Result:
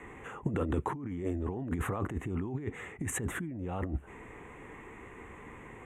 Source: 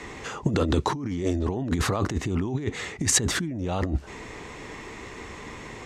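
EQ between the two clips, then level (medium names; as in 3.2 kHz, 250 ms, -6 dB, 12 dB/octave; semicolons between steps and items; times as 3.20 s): Butterworth band-stop 4.8 kHz, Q 0.75; band-stop 620 Hz, Q 12; -8.0 dB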